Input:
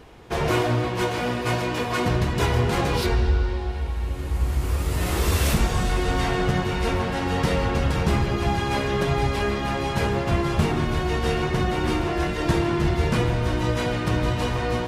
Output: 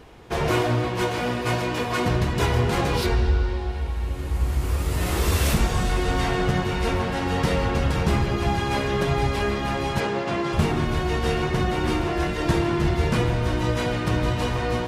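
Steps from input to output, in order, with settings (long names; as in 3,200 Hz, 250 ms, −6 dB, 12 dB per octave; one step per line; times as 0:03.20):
0:10.00–0:10.53: band-pass filter 200–7,000 Hz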